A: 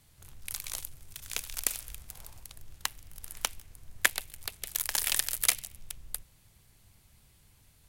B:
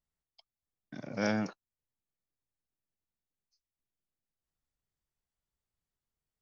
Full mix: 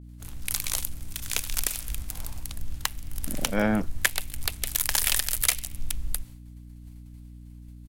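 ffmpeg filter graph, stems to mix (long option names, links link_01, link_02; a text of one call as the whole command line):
ffmpeg -i stem1.wav -i stem2.wav -filter_complex "[0:a]agate=range=-33dB:threshold=-51dB:ratio=3:detection=peak,asubboost=boost=2.5:cutoff=120,volume=3dB[link_01];[1:a]afwtdn=0.00631,adelay=2350,volume=2.5dB[link_02];[link_01][link_02]amix=inputs=2:normalize=0,acontrast=46,aeval=exprs='val(0)+0.00708*(sin(2*PI*60*n/s)+sin(2*PI*2*60*n/s)/2+sin(2*PI*3*60*n/s)/3+sin(2*PI*4*60*n/s)/4+sin(2*PI*5*60*n/s)/5)':channel_layout=same,alimiter=limit=-5.5dB:level=0:latency=1:release=328" out.wav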